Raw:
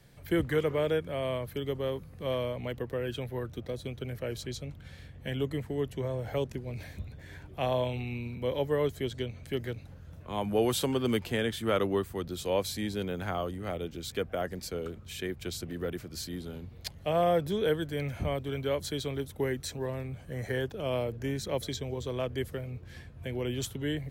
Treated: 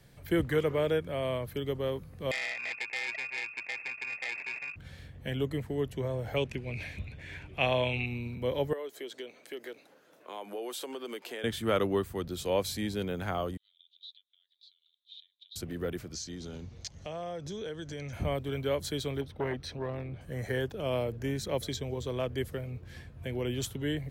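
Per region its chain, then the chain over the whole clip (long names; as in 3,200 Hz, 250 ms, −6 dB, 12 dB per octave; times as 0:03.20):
0:02.31–0:04.76: sample-rate reduction 1,300 Hz + voice inversion scrambler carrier 2,600 Hz + saturating transformer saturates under 4,000 Hz
0:06.36–0:08.06: low-pass filter 10,000 Hz + parametric band 2,500 Hz +13.5 dB 0.68 octaves
0:08.73–0:11.44: high-pass filter 320 Hz 24 dB per octave + downward compressor 3 to 1, threshold −38 dBFS
0:13.57–0:15.56: downward compressor, threshold −36 dBFS + flat-topped band-pass 3,700 Hz, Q 6.4
0:16.13–0:18.13: low-pass with resonance 6,200 Hz, resonance Q 5.4 + downward compressor 4 to 1, threshold −37 dBFS
0:19.21–0:20.21: Savitzky-Golay smoothing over 15 samples + saturating transformer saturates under 610 Hz
whole clip: no processing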